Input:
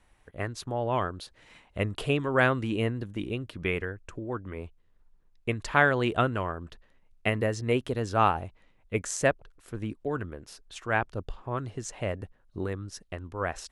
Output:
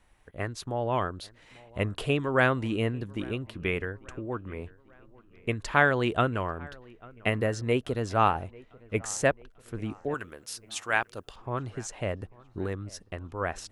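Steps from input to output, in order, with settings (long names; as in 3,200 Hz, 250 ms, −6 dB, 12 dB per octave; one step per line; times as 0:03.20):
0:10.14–0:11.36: spectral tilt +3.5 dB per octave
on a send: delay with a low-pass on its return 843 ms, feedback 51%, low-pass 2,500 Hz, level −23.5 dB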